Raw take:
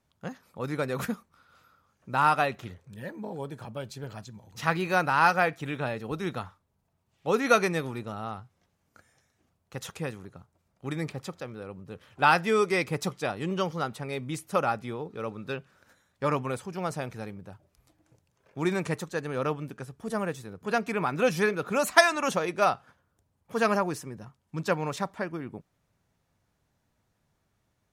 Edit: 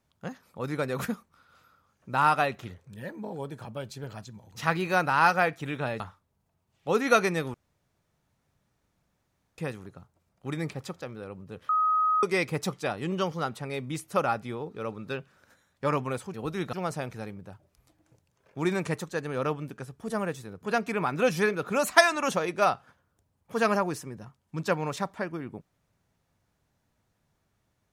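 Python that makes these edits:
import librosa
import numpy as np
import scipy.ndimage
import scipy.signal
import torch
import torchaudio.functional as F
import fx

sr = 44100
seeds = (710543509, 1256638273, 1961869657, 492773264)

y = fx.edit(x, sr, fx.move(start_s=6.0, length_s=0.39, to_s=16.73),
    fx.room_tone_fill(start_s=7.93, length_s=2.04),
    fx.bleep(start_s=12.08, length_s=0.54, hz=1260.0, db=-21.0), tone=tone)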